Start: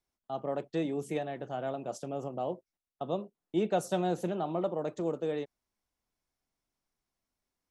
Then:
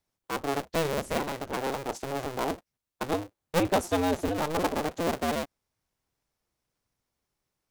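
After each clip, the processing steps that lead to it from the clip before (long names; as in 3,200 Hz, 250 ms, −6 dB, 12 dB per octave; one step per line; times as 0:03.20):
sub-harmonics by changed cycles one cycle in 2, inverted
level +4 dB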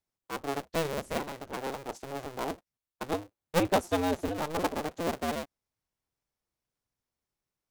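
expander for the loud parts 1.5 to 1, over −35 dBFS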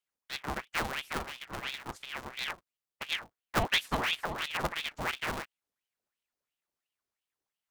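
ring modulator whose carrier an LFO sweeps 1,700 Hz, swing 80%, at 2.9 Hz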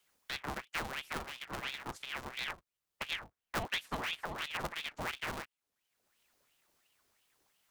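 multiband upward and downward compressor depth 70%
level −5 dB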